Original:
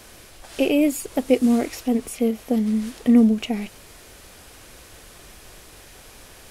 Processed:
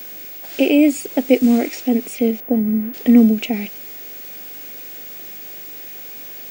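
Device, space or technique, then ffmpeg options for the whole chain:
old television with a line whistle: -filter_complex "[0:a]asettb=1/sr,asplit=3[s0][s1][s2];[s0]atrim=end=2.404[s3];[s1]atrim=start=2.4:end=2.94,asetpts=PTS-STARTPTS,afade=t=in:d=0.004:c=qsin,afade=t=out:st=0.536:d=0.004:c=qsin,lowpass=1400[s4];[s2]atrim=start=2.936[s5];[s3][s4]acrossfade=d=0.004:c1=hsin:c2=qsin[s6];[s6][s5]acrossfade=d=0.004:c1=qsin:c2=hsin,highpass=f=170:w=0.5412,highpass=f=170:w=1.3066,equalizer=f=290:t=q:w=4:g=3,equalizer=f=1100:t=q:w=4:g=-9,equalizer=f=2300:t=q:w=4:g=4,lowpass=f=8800:w=0.5412,lowpass=f=8800:w=1.3066,aeval=exprs='val(0)+0.0178*sin(2*PI*15625*n/s)':c=same,volume=1.5"

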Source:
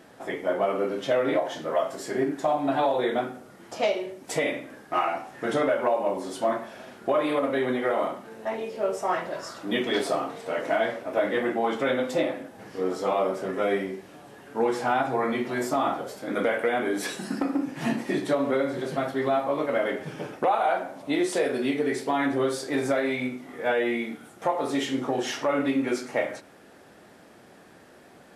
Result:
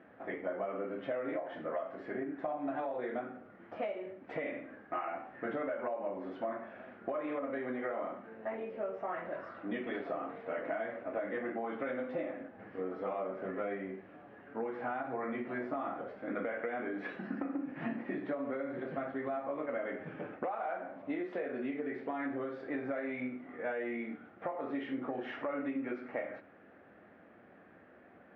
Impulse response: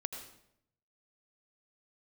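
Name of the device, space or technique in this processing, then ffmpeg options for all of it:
bass amplifier: -af "acompressor=threshold=0.0447:ratio=6,highpass=64,equalizer=f=140:t=q:w=4:g=-8,equalizer=f=400:t=q:w=4:g=-4,equalizer=f=920:t=q:w=4:g=-6,lowpass=f=2200:w=0.5412,lowpass=f=2200:w=1.3066,volume=0.562"

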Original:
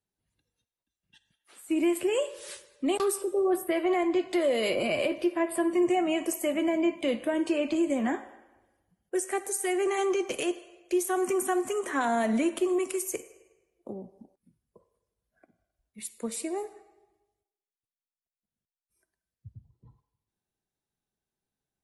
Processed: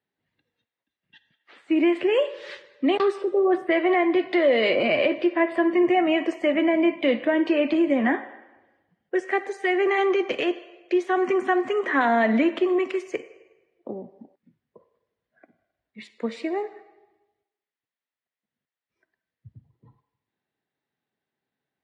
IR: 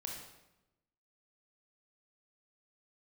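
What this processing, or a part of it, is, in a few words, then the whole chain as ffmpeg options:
kitchen radio: -af "highpass=190,equalizer=f=190:t=q:w=4:g=-5,equalizer=f=360:t=q:w=4:g=-3,equalizer=f=1900:t=q:w=4:g=8,lowpass=f=4000:w=0.5412,lowpass=f=4000:w=1.3066,lowshelf=f=430:g=5,volume=1.78"

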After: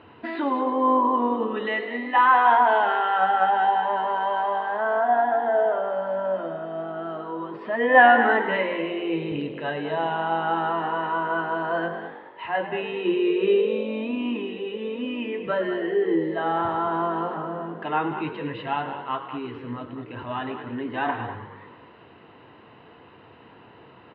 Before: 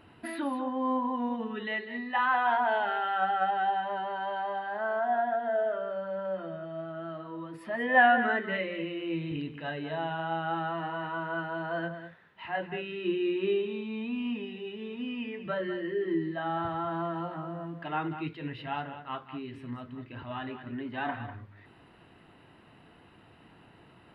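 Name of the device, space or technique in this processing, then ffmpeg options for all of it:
frequency-shifting delay pedal into a guitar cabinet: -filter_complex "[0:a]asplit=8[s0][s1][s2][s3][s4][s5][s6][s7];[s1]adelay=106,afreqshift=48,volume=0.224[s8];[s2]adelay=212,afreqshift=96,volume=0.143[s9];[s3]adelay=318,afreqshift=144,volume=0.0912[s10];[s4]adelay=424,afreqshift=192,volume=0.0589[s11];[s5]adelay=530,afreqshift=240,volume=0.0376[s12];[s6]adelay=636,afreqshift=288,volume=0.024[s13];[s7]adelay=742,afreqshift=336,volume=0.0153[s14];[s0][s8][s9][s10][s11][s12][s13][s14]amix=inputs=8:normalize=0,highpass=83,equalizer=f=170:t=q:w=4:g=-5,equalizer=f=470:t=q:w=4:g=7,equalizer=f=1000:t=q:w=4:g=6,lowpass=f=4000:w=0.5412,lowpass=f=4000:w=1.3066,volume=1.88"

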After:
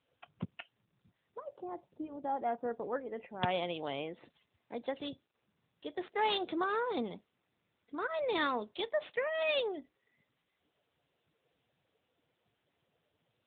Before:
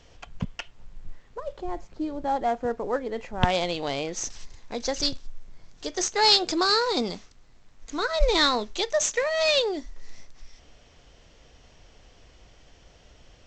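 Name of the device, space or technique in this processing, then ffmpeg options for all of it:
mobile call with aggressive noise cancelling: -af "highpass=120,afftdn=nr=16:nf=-46,volume=0.398" -ar 8000 -c:a libopencore_amrnb -b:a 10200

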